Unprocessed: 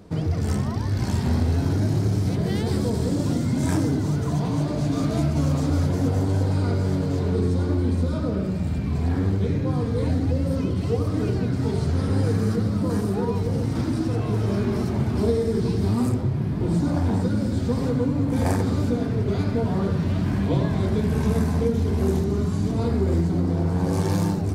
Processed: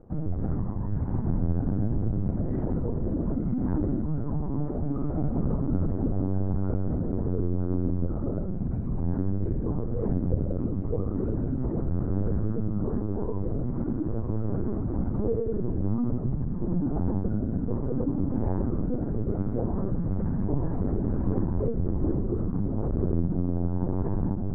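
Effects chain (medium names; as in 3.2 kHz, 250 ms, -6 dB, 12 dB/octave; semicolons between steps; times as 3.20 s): low-pass 1.4 kHz 24 dB/octave; tilt shelf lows +4 dB, about 770 Hz; LPC vocoder at 8 kHz pitch kept; trim -7.5 dB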